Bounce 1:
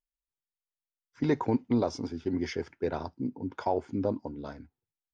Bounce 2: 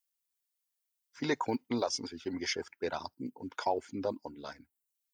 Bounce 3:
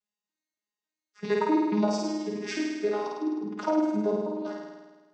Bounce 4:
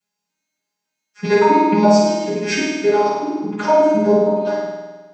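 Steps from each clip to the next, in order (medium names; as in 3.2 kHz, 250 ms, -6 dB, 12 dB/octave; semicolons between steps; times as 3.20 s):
reverb removal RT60 0.52 s; tilt EQ +3.5 dB/octave
vocoder on a broken chord bare fifth, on G#3, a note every 279 ms; on a send: flutter echo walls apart 8.9 m, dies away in 1.3 s; on the sum: trim +6 dB
reverberation RT60 0.45 s, pre-delay 3 ms, DRR -8.5 dB; trim +3 dB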